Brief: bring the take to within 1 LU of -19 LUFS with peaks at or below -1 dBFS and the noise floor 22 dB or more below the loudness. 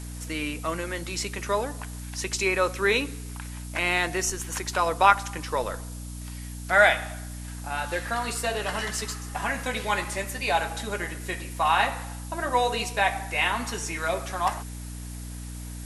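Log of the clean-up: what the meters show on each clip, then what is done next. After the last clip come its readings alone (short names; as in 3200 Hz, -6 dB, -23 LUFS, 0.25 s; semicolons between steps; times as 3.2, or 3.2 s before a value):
hum 60 Hz; harmonics up to 300 Hz; hum level -35 dBFS; noise floor -37 dBFS; noise floor target -49 dBFS; loudness -26.5 LUFS; peak -4.5 dBFS; loudness target -19.0 LUFS
-> notches 60/120/180/240/300 Hz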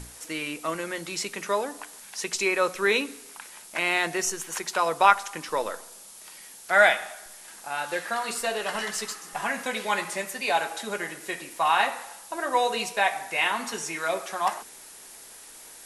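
hum none; noise floor -47 dBFS; noise floor target -49 dBFS
-> denoiser 6 dB, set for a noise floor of -47 dBFS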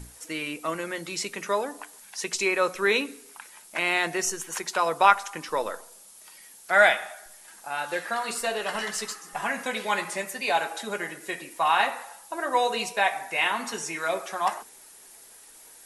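noise floor -50 dBFS; loudness -26.5 LUFS; peak -4.5 dBFS; loudness target -19.0 LUFS
-> gain +7.5 dB; limiter -1 dBFS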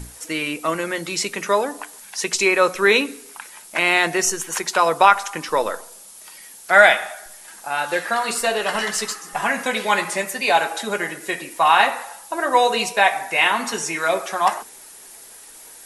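loudness -19.5 LUFS; peak -1.0 dBFS; noise floor -43 dBFS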